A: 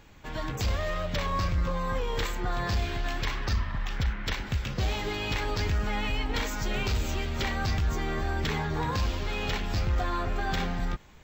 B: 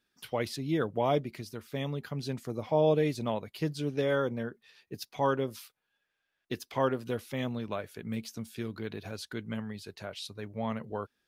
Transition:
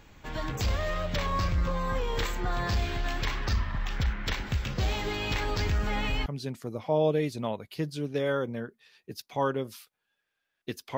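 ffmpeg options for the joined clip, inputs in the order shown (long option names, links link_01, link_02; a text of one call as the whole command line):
ffmpeg -i cue0.wav -i cue1.wav -filter_complex "[1:a]asplit=2[link_01][link_02];[0:a]apad=whole_dur=10.97,atrim=end=10.97,atrim=end=6.262[link_03];[link_02]atrim=start=2.088:end=6.8[link_04];[link_01]atrim=start=1.65:end=2.09,asetpts=PTS-STARTPTS,volume=-11dB,afade=type=in:duration=0.004:curve=hsin,afade=type=out:start_time=0.436:duration=0.004:curve=hsin,adelay=5820[link_05];[link_03][link_04]acrossfade=duration=0.004:curve1=hsin:curve2=hsin[link_06];[link_06][link_05]amix=inputs=2:normalize=0" out.wav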